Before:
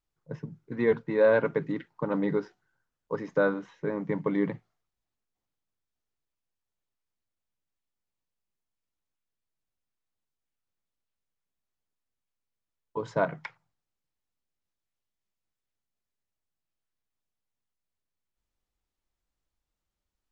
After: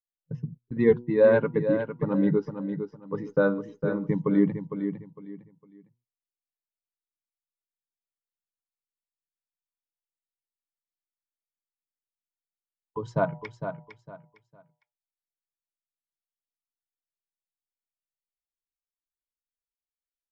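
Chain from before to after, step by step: expander on every frequency bin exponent 1.5; de-hum 120.8 Hz, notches 8; gate -50 dBFS, range -20 dB; bass shelf 440 Hz +10.5 dB; feedback delay 456 ms, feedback 26%, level -8.5 dB

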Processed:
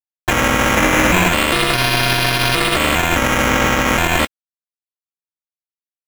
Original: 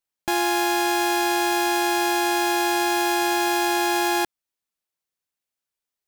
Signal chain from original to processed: 0.77–1.29 s: square wave that keeps the level; steep high-pass 2 kHz 48 dB/octave; reverberation RT60 0.20 s, pre-delay 6 ms, DRR 6.5 dB; decimation with a swept rate 8×, swing 60% 0.35 Hz; tilt EQ -1.5 dB/octave; crossover distortion -40 dBFS; 3.48–3.88 s: peaking EQ 10 kHz -6 dB 0.33 oct; loudness maximiser +18.5 dB; trim -1 dB

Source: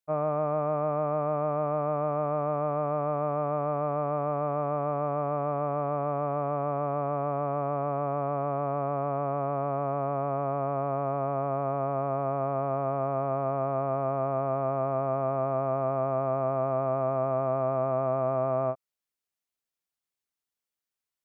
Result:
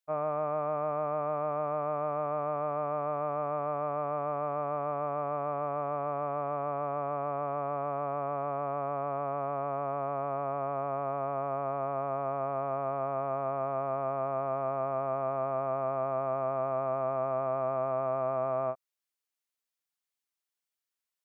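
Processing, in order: bass shelf 450 Hz -10 dB

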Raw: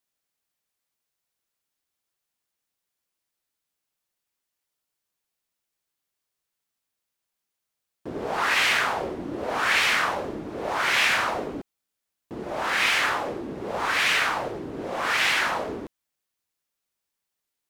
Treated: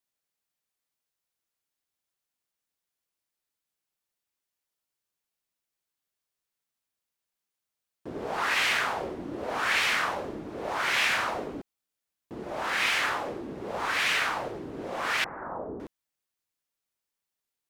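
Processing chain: 15.24–15.80 s: Bessel low-pass 760 Hz, order 8; trim -4 dB

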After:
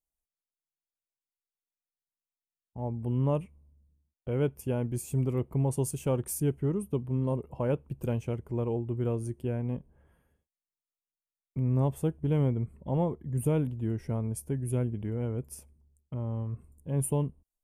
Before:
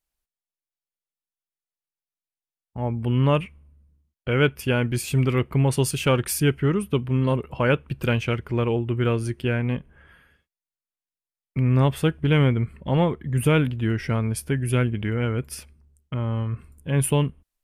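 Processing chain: high-order bell 2.5 kHz -15 dB 2.3 oct; trim -7.5 dB

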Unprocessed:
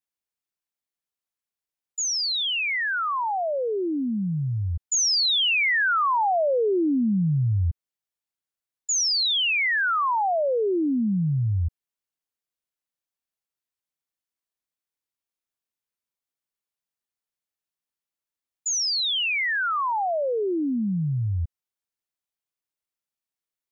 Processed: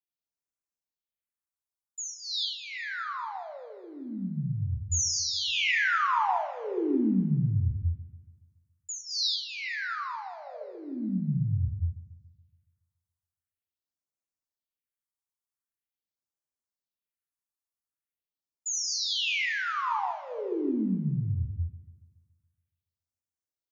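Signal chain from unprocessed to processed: gated-style reverb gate 260 ms flat, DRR 0 dB; phase shifter stages 4, 0.44 Hz, lowest notch 390–3400 Hz; two-band feedback delay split 1.7 kHz, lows 141 ms, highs 200 ms, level -15.5 dB; trim -7.5 dB

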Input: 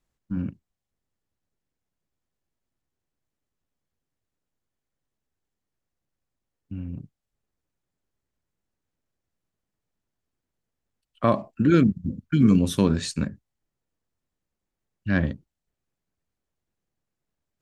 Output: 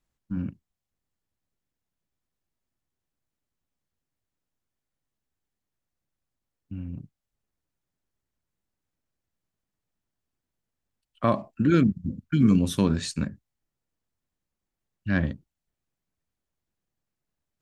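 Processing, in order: peaking EQ 450 Hz -2.5 dB; trim -1.5 dB

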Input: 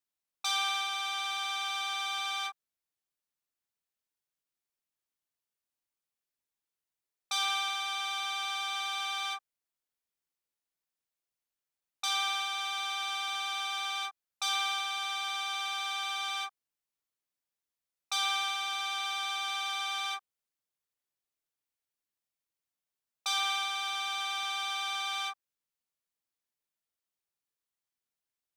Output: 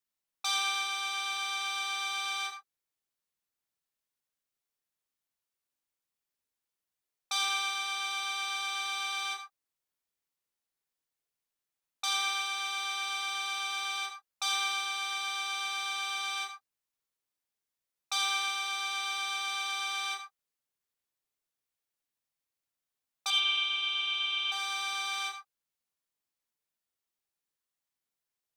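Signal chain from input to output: 23.30–24.52 s: FFT filter 230 Hz 0 dB, 440 Hz -4 dB, 710 Hz -19 dB, 1.1 kHz -4 dB, 1.8 kHz -9 dB, 3 kHz +12 dB, 4.4 kHz -10 dB, 11 kHz -19 dB; gated-style reverb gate 120 ms flat, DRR 6 dB

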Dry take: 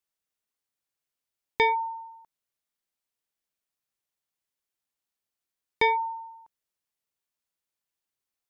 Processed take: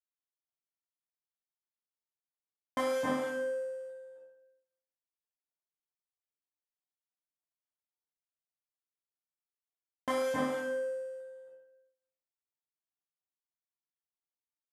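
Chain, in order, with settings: dead-time distortion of 0.22 ms; reverberation RT60 0.50 s, pre-delay 151 ms, DRR -1.5 dB; speed mistake 78 rpm record played at 45 rpm; bass shelf 110 Hz -5 dB; feedback comb 75 Hz, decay 0.49 s, harmonics all, mix 90%

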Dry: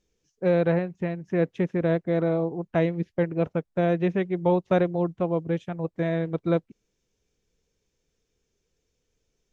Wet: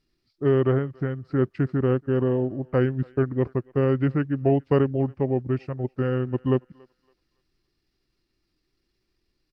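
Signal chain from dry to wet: pitch shift -4.5 st; thinning echo 281 ms, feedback 35%, high-pass 640 Hz, level -23.5 dB; trim +1.5 dB

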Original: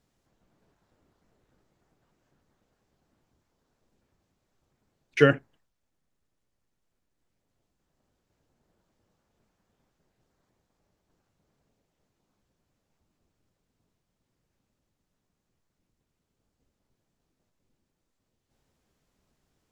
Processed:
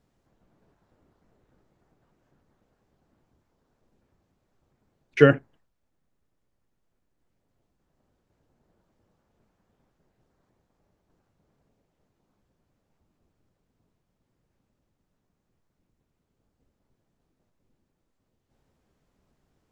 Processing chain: treble shelf 2.3 kHz -8.5 dB; trim +4 dB

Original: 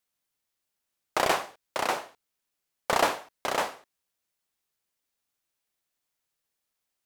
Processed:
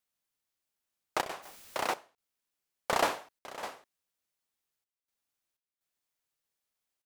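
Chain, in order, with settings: trance gate "xxxxx.xx.xxxxx." 62 bpm -12 dB; 1.42–1.93 s: added noise white -50 dBFS; trim -4 dB

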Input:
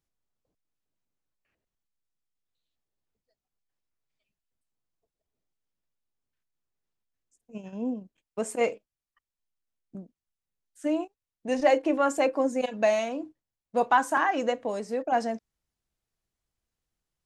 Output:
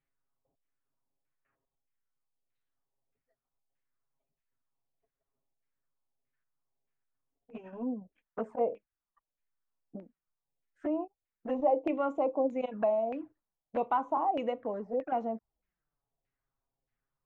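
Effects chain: touch-sensitive flanger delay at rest 7.4 ms, full sweep at -25 dBFS; LFO low-pass saw down 1.6 Hz 620–2300 Hz; compression 1.5:1, threshold -37 dBFS, peak gain reduction 8.5 dB

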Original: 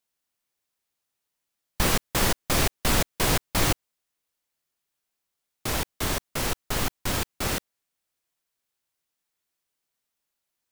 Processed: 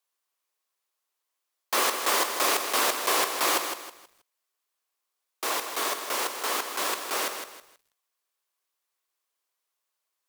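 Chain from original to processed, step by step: high-pass 350 Hz 24 dB/octave; speed mistake 24 fps film run at 25 fps; peaking EQ 1.1 kHz +7.5 dB 0.28 oct; bit-crushed delay 160 ms, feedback 35%, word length 9-bit, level -7.5 dB

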